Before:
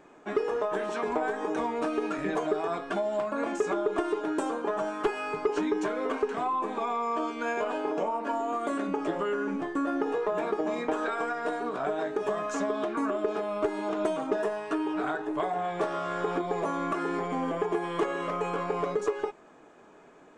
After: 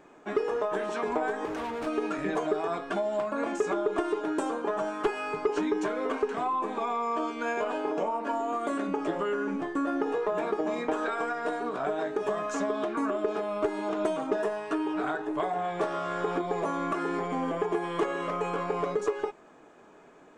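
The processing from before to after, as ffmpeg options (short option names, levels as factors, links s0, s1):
-filter_complex "[0:a]asettb=1/sr,asplit=3[s0][s1][s2];[s0]atrim=end=1.454[s3];[s1]atrim=start=1.45:end=1.87,asetpts=PTS-STARTPTS,afade=t=in:d=0.004:c=qsin,afade=t=out:st=0.416:d=0.004:c=qsin,asoftclip=type=hard:threshold=0.0266[s4];[s2]atrim=start=1.866[s5];[s3][s4]acrossfade=d=0.004:c1=hsin:c2=qsin[s6];[s6][s5]acrossfade=d=0.004:c1=qsin:c2=hsin"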